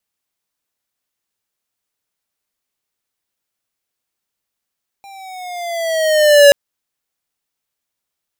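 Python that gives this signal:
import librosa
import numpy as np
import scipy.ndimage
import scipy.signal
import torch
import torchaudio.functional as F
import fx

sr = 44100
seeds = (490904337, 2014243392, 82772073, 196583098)

y = fx.riser_tone(sr, length_s=1.48, level_db=-4.5, wave='square', hz=798.0, rise_st=-6.0, swell_db=33.0)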